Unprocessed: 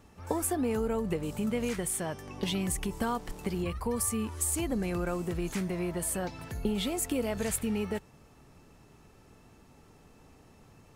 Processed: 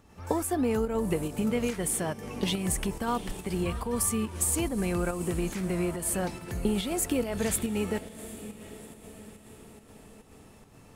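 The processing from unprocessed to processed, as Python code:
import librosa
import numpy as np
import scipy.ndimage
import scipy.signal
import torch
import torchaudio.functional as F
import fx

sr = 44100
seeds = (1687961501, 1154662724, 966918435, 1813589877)

y = fx.echo_diffused(x, sr, ms=746, feedback_pct=52, wet_db=-14.5)
y = fx.volume_shaper(y, sr, bpm=141, per_beat=1, depth_db=-6, release_ms=97.0, shape='slow start')
y = y * librosa.db_to_amplitude(3.0)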